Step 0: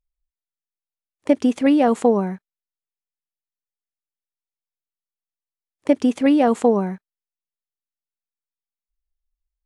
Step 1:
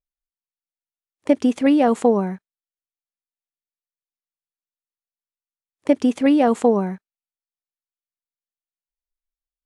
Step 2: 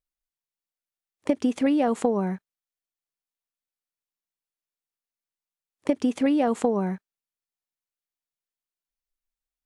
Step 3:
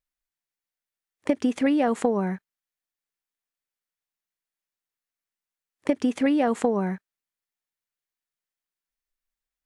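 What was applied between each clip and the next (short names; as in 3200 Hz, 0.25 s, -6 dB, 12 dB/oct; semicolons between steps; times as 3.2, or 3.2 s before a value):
spectral noise reduction 15 dB
compressor, threshold -19 dBFS, peak gain reduction 9 dB
bell 1800 Hz +5 dB 0.79 oct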